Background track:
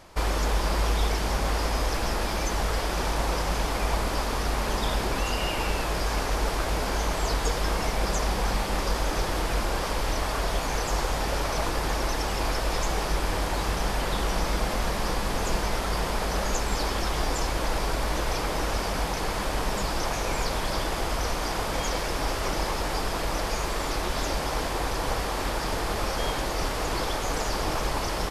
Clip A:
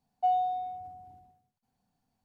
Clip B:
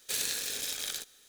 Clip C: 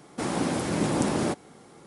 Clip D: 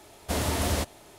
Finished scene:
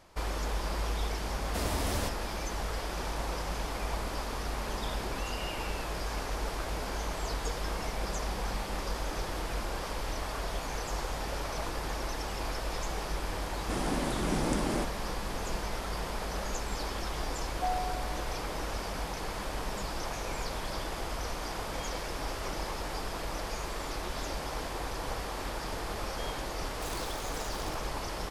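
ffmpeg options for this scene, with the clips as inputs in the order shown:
-filter_complex "[0:a]volume=-8dB[a];[4:a]atrim=end=1.18,asetpts=PTS-STARTPTS,volume=-7dB,afade=t=in:d=0.004:c=hsin,afade=t=out:st=1.176:d=0.004:c=hsin,adelay=1250[b];[3:a]atrim=end=1.86,asetpts=PTS-STARTPTS,volume=-6dB,afade=t=in:d=0.004:c=hsin,afade=t=out:st=1.856:d=0.004:c=hsin,adelay=13510[c];[1:a]atrim=end=2.24,asetpts=PTS-STARTPTS,volume=-6.5dB,afade=t=in:d=0.004:c=hsin,afade=t=out:st=2.236:d=0.004:c=hsin,adelay=17390[d];[2:a]atrim=end=1.28,asetpts=PTS-STARTPTS,volume=-13dB,afade=t=in:d=0.004:c=hsin,afade=t=out:st=1.276:d=0.004:c=hsin,adelay=26720[e];[a][b][c][d][e]amix=inputs=5:normalize=0"

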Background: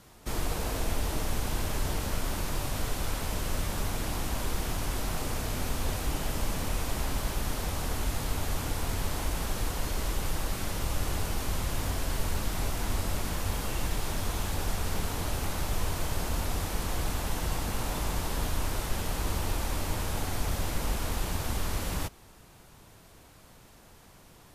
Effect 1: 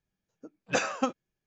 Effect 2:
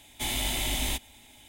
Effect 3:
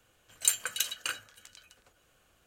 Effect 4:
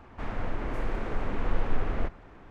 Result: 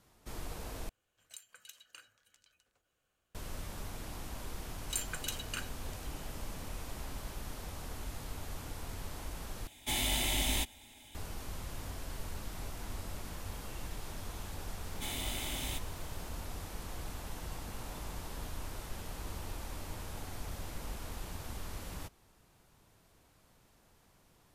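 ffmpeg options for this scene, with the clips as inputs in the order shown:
-filter_complex "[3:a]asplit=2[a][b];[2:a]asplit=2[c][d];[0:a]volume=-11.5dB[e];[a]acompressor=threshold=-37dB:ratio=6:attack=22:release=484:knee=6:detection=peak[f];[b]alimiter=limit=-13dB:level=0:latency=1:release=55[g];[d]acrusher=bits=5:mode=log:mix=0:aa=0.000001[h];[e]asplit=3[i][j][k];[i]atrim=end=0.894[l];[f]atrim=end=2.46,asetpts=PTS-STARTPTS,volume=-14.5dB[m];[j]atrim=start=3.346:end=9.674[n];[c]atrim=end=1.48,asetpts=PTS-STARTPTS,volume=-2.5dB[o];[k]atrim=start=11.146[p];[g]atrim=end=2.46,asetpts=PTS-STARTPTS,volume=-6.5dB,afade=t=in:d=0.004:c=hsin,afade=t=out:st=2.456:d=0.004:c=hsin,adelay=4480[q];[h]atrim=end=1.48,asetpts=PTS-STARTPTS,volume=-9.5dB,afade=t=in:d=0.004:c=hsin,afade=t=out:st=1.476:d=0.004:c=hsin,adelay=14810[r];[l][m]acrossfade=d=0.004:c1=hsin:c2=hsin[s];[s][n]acrossfade=d=0.004:c1=hsin:c2=hsin[t];[t][o]acrossfade=d=0.004:c1=hsin:c2=hsin[u];[u][p]acrossfade=d=0.004:c1=hsin:c2=hsin[v];[v][q][r]amix=inputs=3:normalize=0"

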